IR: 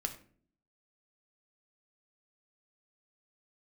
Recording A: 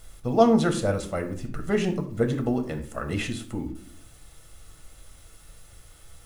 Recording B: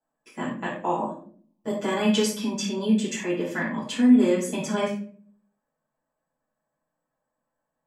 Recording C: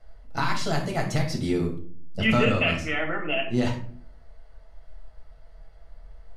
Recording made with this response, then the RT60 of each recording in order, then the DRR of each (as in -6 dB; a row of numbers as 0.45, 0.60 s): A; 0.50, 0.50, 0.50 s; 5.0, -9.5, 0.0 dB